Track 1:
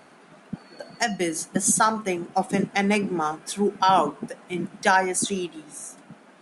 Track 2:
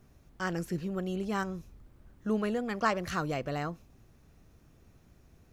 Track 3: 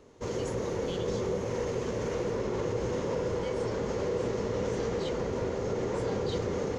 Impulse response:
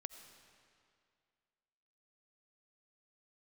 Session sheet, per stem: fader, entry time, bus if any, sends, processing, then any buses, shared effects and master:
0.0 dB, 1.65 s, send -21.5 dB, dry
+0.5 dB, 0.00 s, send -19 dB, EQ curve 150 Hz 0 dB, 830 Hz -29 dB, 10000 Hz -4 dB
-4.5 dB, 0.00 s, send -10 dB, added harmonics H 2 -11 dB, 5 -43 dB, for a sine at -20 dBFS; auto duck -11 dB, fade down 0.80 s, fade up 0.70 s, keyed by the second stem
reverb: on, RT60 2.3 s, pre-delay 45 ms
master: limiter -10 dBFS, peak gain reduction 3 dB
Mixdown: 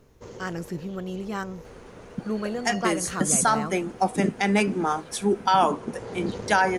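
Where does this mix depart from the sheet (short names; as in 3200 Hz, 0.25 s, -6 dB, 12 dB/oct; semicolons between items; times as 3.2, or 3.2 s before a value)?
stem 2: missing EQ curve 150 Hz 0 dB, 830 Hz -29 dB, 10000 Hz -4 dB; stem 3: send off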